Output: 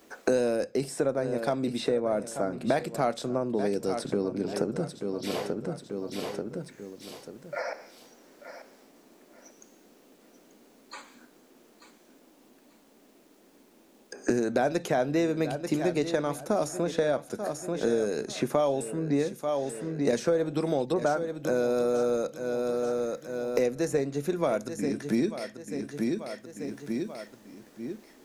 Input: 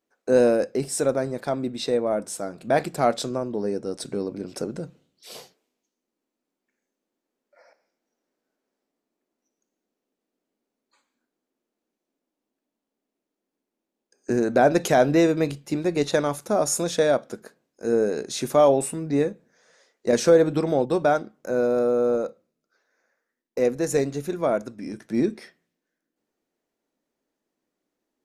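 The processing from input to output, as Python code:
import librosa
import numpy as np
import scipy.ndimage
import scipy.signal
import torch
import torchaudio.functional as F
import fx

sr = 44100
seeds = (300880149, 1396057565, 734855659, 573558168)

p1 = fx.lowpass(x, sr, hz=1900.0, slope=24, at=(20.92, 21.33), fade=0.02)
p2 = p1 + fx.echo_feedback(p1, sr, ms=887, feedback_pct=23, wet_db=-14.0, dry=0)
p3 = fx.band_squash(p2, sr, depth_pct=100)
y = p3 * librosa.db_to_amplitude(-5.0)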